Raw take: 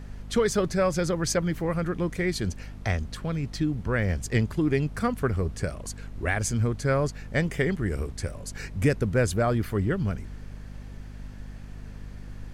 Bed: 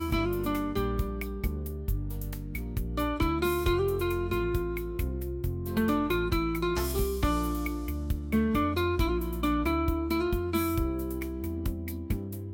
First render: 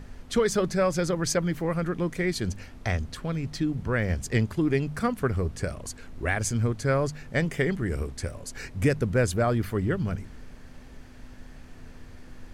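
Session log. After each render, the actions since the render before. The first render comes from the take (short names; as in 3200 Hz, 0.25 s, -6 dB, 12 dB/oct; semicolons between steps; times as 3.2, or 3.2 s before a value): de-hum 50 Hz, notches 4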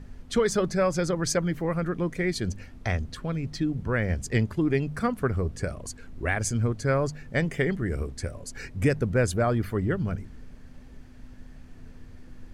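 denoiser 6 dB, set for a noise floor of -46 dBFS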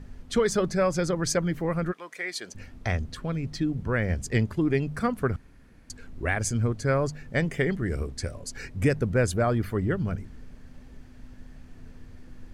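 1.91–2.54 HPF 1100 Hz -> 530 Hz; 5.36–5.9 room tone; 7.7–8.57 dynamic EQ 4700 Hz, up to +5 dB, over -52 dBFS, Q 1.2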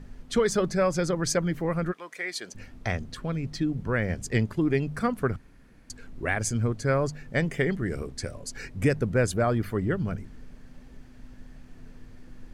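bell 75 Hz -12 dB 0.34 oct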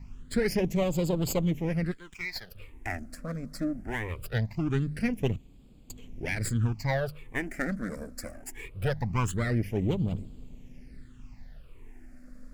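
minimum comb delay 0.4 ms; phaser stages 8, 0.22 Hz, lowest notch 110–1800 Hz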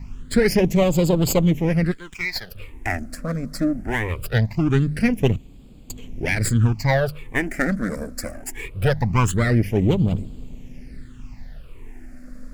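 gain +9.5 dB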